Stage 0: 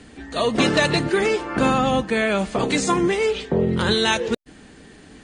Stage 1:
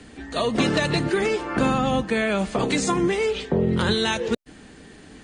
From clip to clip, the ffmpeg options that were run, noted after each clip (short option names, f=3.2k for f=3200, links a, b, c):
-filter_complex "[0:a]acrossover=split=250[a][b];[b]acompressor=threshold=-21dB:ratio=3[c];[a][c]amix=inputs=2:normalize=0"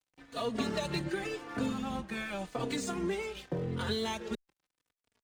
-filter_complex "[0:a]aeval=exprs='sgn(val(0))*max(abs(val(0))-0.0133,0)':c=same,asplit=2[a][b];[b]adelay=3.4,afreqshift=-0.87[c];[a][c]amix=inputs=2:normalize=1,volume=-8dB"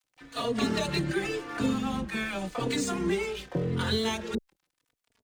-filter_complex "[0:a]acrossover=split=680[a][b];[a]adelay=30[c];[c][b]amix=inputs=2:normalize=0,volume=6dB"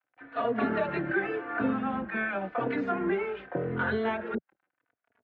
-af "highpass=130,equalizer=f=160:t=q:w=4:g=-9,equalizer=f=680:t=q:w=4:g=7,equalizer=f=1.5k:t=q:w=4:g=8,lowpass=f=2.2k:w=0.5412,lowpass=f=2.2k:w=1.3066"